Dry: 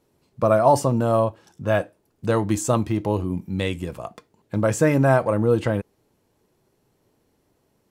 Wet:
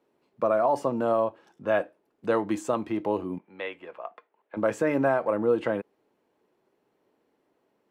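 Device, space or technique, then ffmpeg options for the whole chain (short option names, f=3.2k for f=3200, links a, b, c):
DJ mixer with the lows and highs turned down: -filter_complex "[0:a]asettb=1/sr,asplit=3[a][b][c];[a]atrim=end=3.384[d];[b]atrim=start=3.38:end=4.57,asetpts=PTS-STARTPTS,afade=t=in:d=0.004:c=qsin,afade=t=out:st=1.186:d=0.004:c=qsin,acrossover=split=480 3300:gain=0.112 1 0.0794[e][f][g];[e][f][g]amix=inputs=3:normalize=0[h];[c]atrim=start=4.566[i];[d][h]acrossfade=d=0.004:c1=hsin:c2=qsin[j];[j][i]acrossfade=d=0.004:c1=qsin:c2=hsin,acrossover=split=220 3300:gain=0.0891 1 0.2[k][l][m];[k][l][m]amix=inputs=3:normalize=0,alimiter=limit=-12dB:level=0:latency=1:release=152,volume=-2dB"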